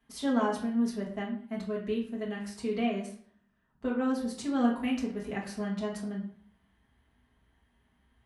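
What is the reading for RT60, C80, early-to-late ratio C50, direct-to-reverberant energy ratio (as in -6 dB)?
0.55 s, 11.0 dB, 7.5 dB, -4.5 dB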